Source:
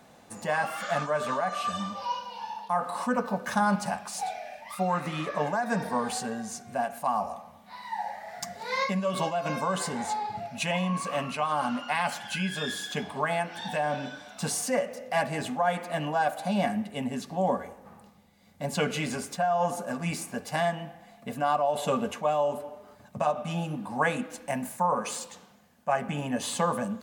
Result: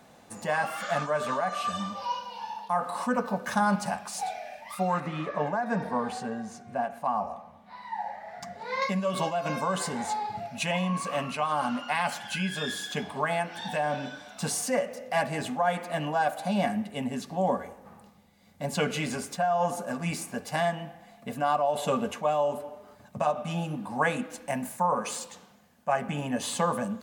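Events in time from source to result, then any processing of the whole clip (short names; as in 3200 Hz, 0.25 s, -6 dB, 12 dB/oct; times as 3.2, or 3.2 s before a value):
5–8.82 LPF 2000 Hz 6 dB/oct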